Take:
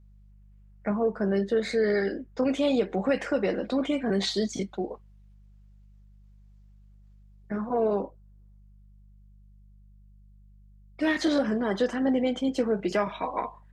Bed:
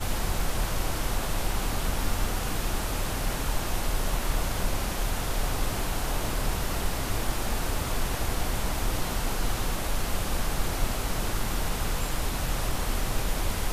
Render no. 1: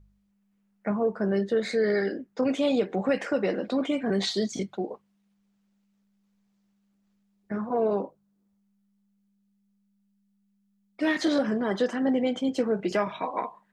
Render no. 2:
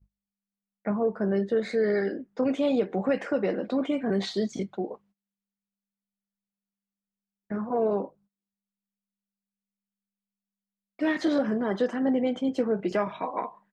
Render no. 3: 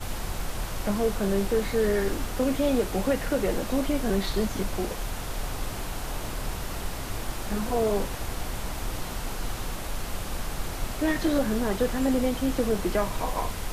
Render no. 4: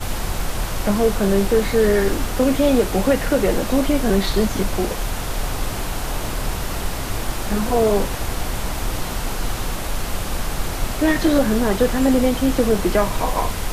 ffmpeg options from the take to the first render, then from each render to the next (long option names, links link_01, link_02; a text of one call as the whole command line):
ffmpeg -i in.wav -af "bandreject=frequency=50:width_type=h:width=4,bandreject=frequency=100:width_type=h:width=4,bandreject=frequency=150:width_type=h:width=4" out.wav
ffmpeg -i in.wav -af "agate=range=-23dB:threshold=-57dB:ratio=16:detection=peak,highshelf=frequency=2900:gain=-9" out.wav
ffmpeg -i in.wav -i bed.wav -filter_complex "[1:a]volume=-4dB[link_01];[0:a][link_01]amix=inputs=2:normalize=0" out.wav
ffmpeg -i in.wav -af "volume=8dB" out.wav